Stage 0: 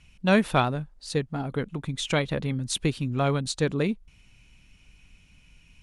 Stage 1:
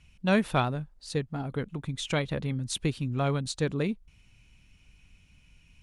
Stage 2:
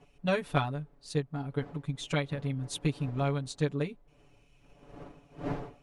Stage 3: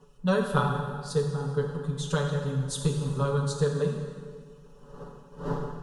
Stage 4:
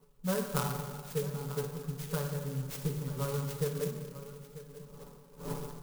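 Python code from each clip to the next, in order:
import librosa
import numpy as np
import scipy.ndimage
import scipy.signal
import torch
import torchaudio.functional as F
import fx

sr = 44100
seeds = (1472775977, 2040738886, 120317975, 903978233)

y1 = fx.peak_eq(x, sr, hz=86.0, db=4.0, octaves=1.4)
y1 = F.gain(torch.from_numpy(y1), -4.0).numpy()
y2 = fx.dmg_wind(y1, sr, seeds[0], corner_hz=520.0, level_db=-43.0)
y2 = y2 + 0.99 * np.pad(y2, (int(7.0 * sr / 1000.0), 0))[:len(y2)]
y2 = fx.transient(y2, sr, attack_db=4, sustain_db=-2)
y2 = F.gain(torch.from_numpy(y2), -8.5).numpy()
y3 = fx.fixed_phaser(y2, sr, hz=450.0, stages=8)
y3 = fx.rev_plate(y3, sr, seeds[1], rt60_s=1.9, hf_ratio=0.8, predelay_ms=0, drr_db=1.5)
y3 = F.gain(torch.from_numpy(y3), 5.5).numpy()
y4 = y3 + 10.0 ** (-14.5 / 20.0) * np.pad(y3, (int(940 * sr / 1000.0), 0))[:len(y3)]
y4 = fx.clock_jitter(y4, sr, seeds[2], jitter_ms=0.097)
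y4 = F.gain(torch.from_numpy(y4), -7.5).numpy()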